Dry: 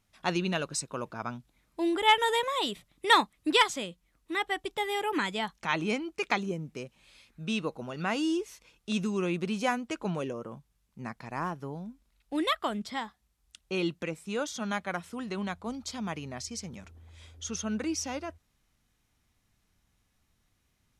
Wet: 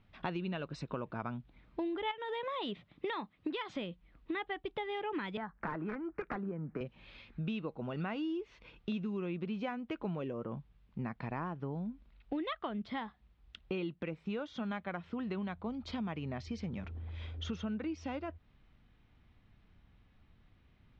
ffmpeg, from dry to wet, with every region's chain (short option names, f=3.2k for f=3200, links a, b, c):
-filter_complex "[0:a]asettb=1/sr,asplit=3[a][b][c];[a]atrim=end=2.114[d];[b]atrim=start=2.11:end=3.75,asetpts=PTS-STARTPTS,afade=t=in:d=0.004:c=qsin,afade=t=out:st=1.636:d=0.004:c=qsin,highpass=100,acompressor=threshold=-28dB:ratio=4:attack=3.2:release=140:knee=1:detection=peak[e];[c]atrim=start=3.746[f];[d][e]acrossfade=d=0.004:c1=hsin:c2=qsin[g];[g][f]acrossfade=d=0.004:c1=qsin:c2=hsin,asettb=1/sr,asplit=3[h][i][j];[h]atrim=end=5.374[k];[i]atrim=start=5.37:end=6.81,asetpts=PTS-STARTPTS,afade=t=in:d=0.004:c=qsin,afade=t=out:st=1.436:d=0.004:c=qsin,aeval=exprs='(mod(10.6*val(0)+1,2)-1)/10.6':c=same,acrossover=split=150|850|3700[l][m][n][o];[l]acompressor=threshold=-55dB:ratio=3[p];[m]acompressor=threshold=-40dB:ratio=3[q];[n]acompressor=threshold=-41dB:ratio=3[r];[o]acompressor=threshold=-40dB:ratio=3[s];[p][q][r][s]amix=inputs=4:normalize=0,highshelf=f=2.2k:t=q:w=3:g=-12.5[t];[j]atrim=start=6.806[u];[k][t]acrossfade=d=0.004:c1=hsin:c2=qsin[v];[v][u]acrossfade=d=0.004:c1=qsin:c2=hsin,lowpass=f=3.5k:w=0.5412,lowpass=f=3.5k:w=1.3066,lowshelf=f=430:g=6,acompressor=threshold=-40dB:ratio=6,volume=4dB"